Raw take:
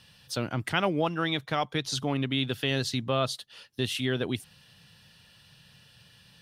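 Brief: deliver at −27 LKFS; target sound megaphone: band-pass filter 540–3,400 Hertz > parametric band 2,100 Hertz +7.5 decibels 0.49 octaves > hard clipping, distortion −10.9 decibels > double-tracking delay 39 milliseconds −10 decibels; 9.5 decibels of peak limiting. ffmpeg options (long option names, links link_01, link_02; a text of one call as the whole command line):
ffmpeg -i in.wav -filter_complex "[0:a]alimiter=limit=-20.5dB:level=0:latency=1,highpass=540,lowpass=3400,equalizer=frequency=2100:width_type=o:width=0.49:gain=7.5,asoftclip=type=hard:threshold=-29.5dB,asplit=2[link_01][link_02];[link_02]adelay=39,volume=-10dB[link_03];[link_01][link_03]amix=inputs=2:normalize=0,volume=9.5dB" out.wav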